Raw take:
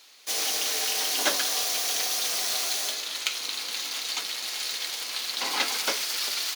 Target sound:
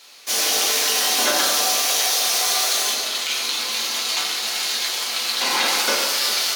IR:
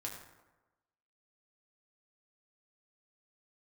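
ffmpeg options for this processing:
-filter_complex "[0:a]asettb=1/sr,asplit=3[s0][s1][s2];[s0]atrim=end=1.794[s3];[s1]atrim=start=1.79:end=2.77,asetpts=PTS-STARTPTS,afade=t=in:d=0.004:c=qsin,afade=t=out:st=0.976:d=0.004:c=qsin,highpass=330[s4];[s2]atrim=start=2.766[s5];[s3][s4]acrossfade=d=0.004:c1=hsin:c2=qsin[s6];[s6][s5]acrossfade=d=0.004:c1=qsin:c2=hsin[s7];[1:a]atrim=start_sample=2205,asetrate=32193,aresample=44100[s8];[s7][s8]afir=irnorm=-1:irlink=0,alimiter=level_in=6.31:limit=0.891:release=50:level=0:latency=1,volume=0.422"

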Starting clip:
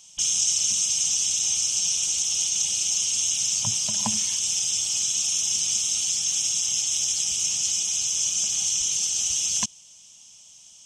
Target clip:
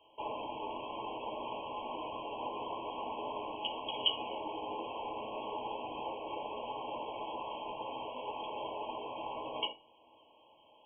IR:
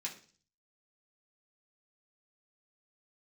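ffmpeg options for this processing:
-filter_complex "[0:a]lowpass=f=3300:t=q:w=0.5098,lowpass=f=3300:t=q:w=0.6013,lowpass=f=3300:t=q:w=0.9,lowpass=f=3300:t=q:w=2.563,afreqshift=-3900[s0];[1:a]atrim=start_sample=2205,asetrate=66150,aresample=44100[s1];[s0][s1]afir=irnorm=-1:irlink=0,afftfilt=real='re*eq(mod(floor(b*sr/1024/1100),2),0)':imag='im*eq(mod(floor(b*sr/1024/1100),2),0)':win_size=1024:overlap=0.75,volume=2.51"

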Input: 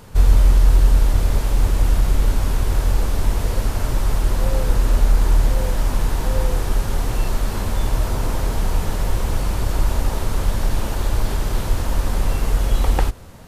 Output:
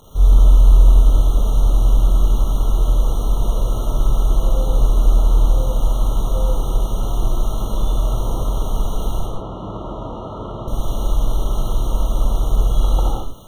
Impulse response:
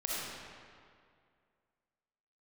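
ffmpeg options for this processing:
-filter_complex "[0:a]acrusher=bits=6:mix=0:aa=0.000001,asettb=1/sr,asplit=3[s0][s1][s2];[s0]atrim=end=9.194[s3];[s1]atrim=start=9.19:end=10.68,asetpts=PTS-STARTPTS,afade=t=in:d=0.004:c=qsin,afade=t=out:st=1.486:d=0.004:c=qsin,highpass=110,lowpass=2100[s4];[s2]atrim=start=10.676[s5];[s3][s4]acrossfade=d=0.004:c1=hsin:c2=qsin[s6];[s6][s5]acrossfade=d=0.004:c1=qsin:c2=hsin[s7];[1:a]atrim=start_sample=2205,afade=t=out:st=0.28:d=0.01,atrim=end_sample=12789[s8];[s7][s8]afir=irnorm=-1:irlink=0,afftfilt=real='re*eq(mod(floor(b*sr/1024/1400),2),0)':imag='im*eq(mod(floor(b*sr/1024/1400),2),0)':win_size=1024:overlap=0.75,volume=0.631"

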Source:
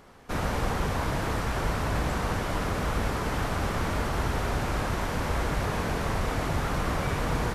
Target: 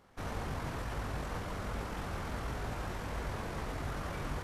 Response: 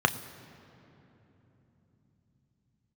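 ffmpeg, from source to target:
-af "flanger=delay=18.5:depth=3.5:speed=1.3,atempo=1.7,volume=0.447"

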